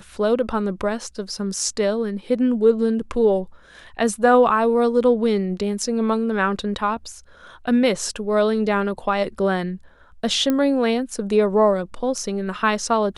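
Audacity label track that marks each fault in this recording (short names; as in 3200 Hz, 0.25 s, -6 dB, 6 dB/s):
10.500000	10.500000	pop -9 dBFS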